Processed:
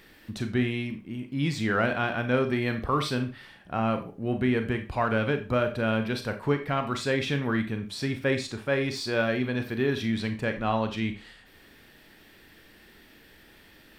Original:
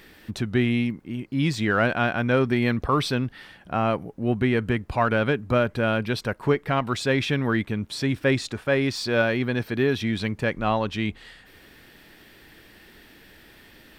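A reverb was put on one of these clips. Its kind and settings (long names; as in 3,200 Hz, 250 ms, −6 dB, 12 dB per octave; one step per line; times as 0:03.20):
four-comb reverb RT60 0.32 s, combs from 28 ms, DRR 6.5 dB
level −4.5 dB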